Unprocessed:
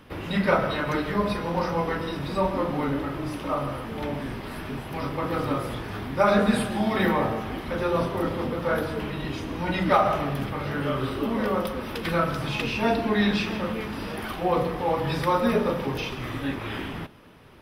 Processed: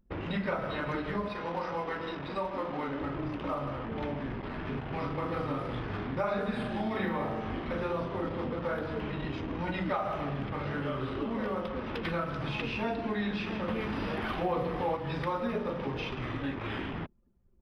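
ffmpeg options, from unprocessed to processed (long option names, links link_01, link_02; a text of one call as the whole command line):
ffmpeg -i in.wav -filter_complex "[0:a]asettb=1/sr,asplit=3[link_01][link_02][link_03];[link_01]atrim=end=1.284[link_04];[link_02]atrim=start=1.28:end=3.01,asetpts=PTS-STARTPTS,afade=type=in:duration=0.004:curve=qsin,afade=type=out:start_time=1.726:duration=0.004:curve=qsin,lowshelf=frequency=260:gain=-11.5[link_05];[link_03]atrim=start=3.006[link_06];[link_04][link_05]acrossfade=duration=0.004:curve1=hsin:curve2=qsin[link_07];[link_07][link_06]acrossfade=duration=0.004:curve1=qsin:curve2=hsin,asettb=1/sr,asplit=3[link_08][link_09][link_10];[link_08]atrim=end=4.624[link_11];[link_09]atrim=start=4.62:end=7.93,asetpts=PTS-STARTPTS,afade=type=in:duration=0.004:curve=qsin,afade=type=out:start_time=3.306:duration=0.004:curve=qsin,asplit=2[link_12][link_13];[link_13]adelay=41,volume=-5dB[link_14];[link_12][link_14]amix=inputs=2:normalize=0,atrim=end_sample=145971[link_15];[link_10]atrim=start=7.926[link_16];[link_11][link_15]acrossfade=duration=0.004:curve1=hsin:curve2=qsin[link_17];[link_17][link_16]acrossfade=duration=0.004:curve1=qsin:curve2=hsin,asettb=1/sr,asplit=3[link_18][link_19][link_20];[link_18]atrim=end=13.684[link_21];[link_19]atrim=start=13.68:end=14.97,asetpts=PTS-STARTPTS,afade=type=in:duration=0.004:curve=qsin,afade=type=out:start_time=1.286:duration=0.004:curve=qsin,acontrast=54[link_22];[link_20]atrim=start=14.966[link_23];[link_21][link_22]acrossfade=duration=0.004:curve1=hsin:curve2=qsin[link_24];[link_24][link_23]acrossfade=duration=0.004:curve1=qsin:curve2=hsin,acrossover=split=4200[link_25][link_26];[link_26]acompressor=threshold=-55dB:ratio=4:attack=1:release=60[link_27];[link_25][link_27]amix=inputs=2:normalize=0,anlmdn=1.58,acompressor=threshold=-30dB:ratio=3,volume=-1.5dB" out.wav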